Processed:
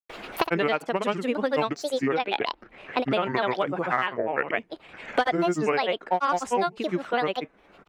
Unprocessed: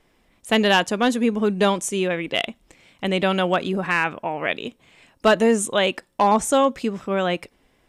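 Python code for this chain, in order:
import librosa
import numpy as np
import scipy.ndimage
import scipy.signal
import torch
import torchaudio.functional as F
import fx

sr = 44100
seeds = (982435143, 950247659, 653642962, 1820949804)

y = fx.bass_treble(x, sr, bass_db=-13, treble_db=-13)
y = fx.granulator(y, sr, seeds[0], grain_ms=100.0, per_s=20.0, spray_ms=100.0, spread_st=7)
y = fx.band_squash(y, sr, depth_pct=100)
y = y * librosa.db_to_amplitude(-3.0)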